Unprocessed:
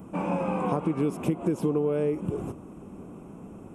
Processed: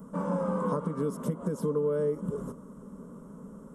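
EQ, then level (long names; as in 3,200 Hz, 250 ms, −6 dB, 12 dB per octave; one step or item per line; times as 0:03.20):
phaser with its sweep stopped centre 500 Hz, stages 8
0.0 dB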